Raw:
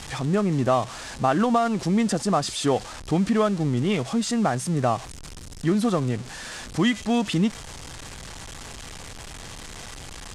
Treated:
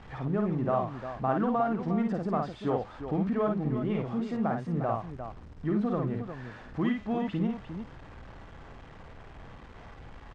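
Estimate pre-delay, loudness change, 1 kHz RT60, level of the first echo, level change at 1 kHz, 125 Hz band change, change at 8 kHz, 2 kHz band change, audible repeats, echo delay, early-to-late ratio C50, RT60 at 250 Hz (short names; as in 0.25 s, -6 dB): none, -6.5 dB, none, -3.5 dB, -6.5 dB, -6.0 dB, under -30 dB, -10.5 dB, 2, 53 ms, none, none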